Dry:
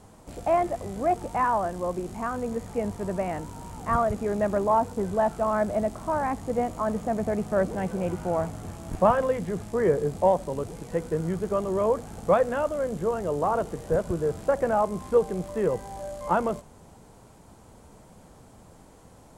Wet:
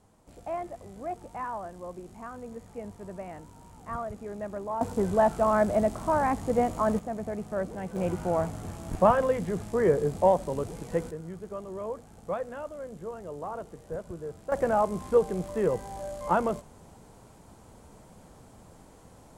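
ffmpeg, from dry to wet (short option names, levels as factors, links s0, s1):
-af "asetnsamples=n=441:p=0,asendcmd='4.81 volume volume 1.5dB;6.99 volume volume -7dB;7.96 volume volume -0.5dB;11.11 volume volume -11.5dB;14.52 volume volume -1dB',volume=0.282"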